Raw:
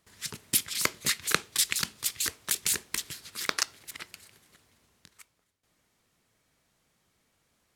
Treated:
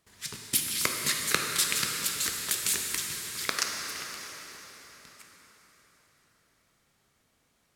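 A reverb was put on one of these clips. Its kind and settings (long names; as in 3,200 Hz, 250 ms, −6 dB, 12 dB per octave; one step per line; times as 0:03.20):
dense smooth reverb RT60 4.8 s, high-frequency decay 0.8×, DRR 0.5 dB
level −1.5 dB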